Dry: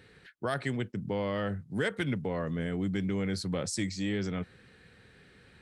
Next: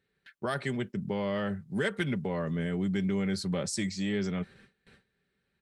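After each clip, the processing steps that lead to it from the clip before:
noise gate with hold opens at −45 dBFS
comb filter 5.1 ms, depth 42%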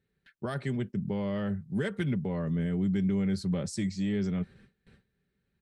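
low-shelf EQ 310 Hz +11.5 dB
level −6 dB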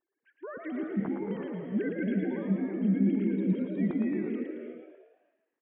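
three sine waves on the formant tracks
echo with shifted repeats 111 ms, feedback 51%, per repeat +67 Hz, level −5.5 dB
on a send at −5 dB: convolution reverb, pre-delay 24 ms
on the sum: level −2 dB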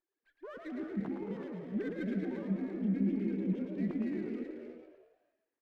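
windowed peak hold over 5 samples
level −5.5 dB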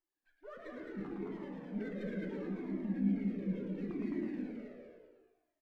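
single-tap delay 211 ms −4 dB
rectangular room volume 69 cubic metres, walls mixed, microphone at 0.41 metres
flanger whose copies keep moving one way falling 0.72 Hz

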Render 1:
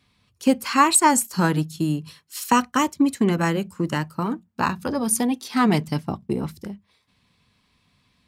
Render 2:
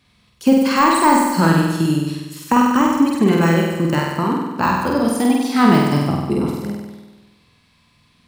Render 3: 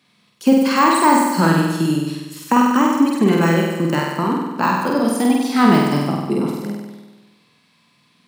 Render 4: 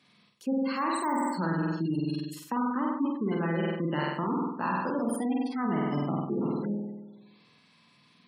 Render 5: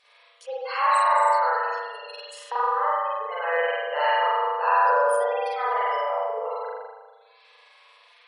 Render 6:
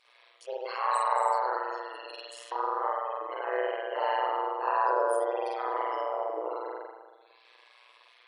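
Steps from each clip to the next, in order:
de-essing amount 75%; flutter between parallel walls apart 8.3 metres, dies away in 1.2 s; level +4 dB
high-pass filter 150 Hz 24 dB per octave
gate on every frequency bin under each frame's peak −25 dB strong; reversed playback; downward compressor 6 to 1, threshold −23 dBFS, peak gain reduction 14.5 dB; reversed playback; level −3.5 dB
brick-wall band-pass 430–11,000 Hz; spring reverb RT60 1.3 s, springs 38 ms, chirp 65 ms, DRR −7.5 dB; level +2.5 dB
amplitude modulation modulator 120 Hz, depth 75%; dynamic equaliser 2,100 Hz, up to −8 dB, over −40 dBFS, Q 0.73

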